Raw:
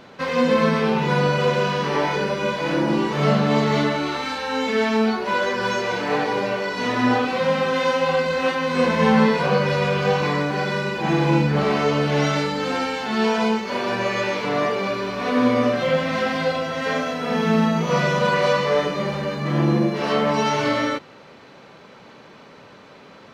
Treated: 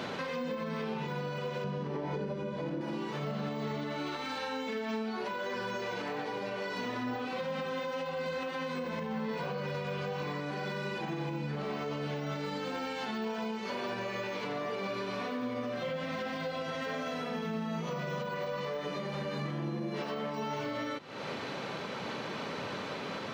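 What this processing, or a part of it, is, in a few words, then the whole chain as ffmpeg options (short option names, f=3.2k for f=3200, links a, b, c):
broadcast voice chain: -filter_complex "[0:a]asettb=1/sr,asplit=3[a][b][c];[a]atrim=end=1.644[d];[b]atrim=start=1.64:end=2.81,asetpts=PTS-STARTPTS,afade=t=in:d=0.004:c=qsin,afade=t=out:st=1.166:d=0.004:c=qsin,tiltshelf=f=750:g=9[e];[c]atrim=start=2.806[f];[d][e]acrossfade=d=0.004:c1=hsin:c2=qsin[g];[g][f]acrossfade=d=0.004:c1=qsin:c2=hsin,highpass=f=78:w=0.5412,highpass=f=78:w=1.3066,deesser=0.95,acompressor=threshold=-35dB:ratio=4,equalizer=f=3.4k:t=o:w=0.77:g=2,alimiter=level_in=11dB:limit=-24dB:level=0:latency=1:release=350,volume=-11dB,volume=7.5dB"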